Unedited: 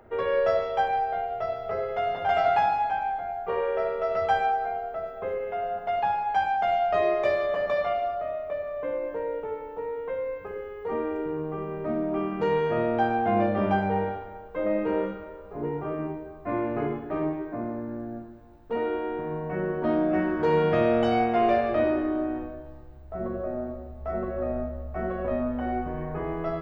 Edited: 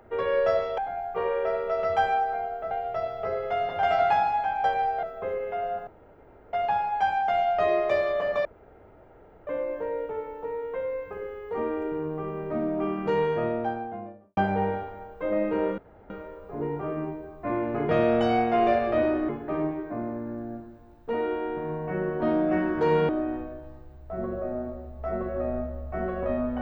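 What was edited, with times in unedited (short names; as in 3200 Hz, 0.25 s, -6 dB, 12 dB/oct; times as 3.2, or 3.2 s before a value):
0.78–1.17 swap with 3.1–5.03
5.87 insert room tone 0.66 s
7.79–8.81 room tone
12.46–13.71 studio fade out
15.12 insert room tone 0.32 s
20.71–22.11 move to 16.91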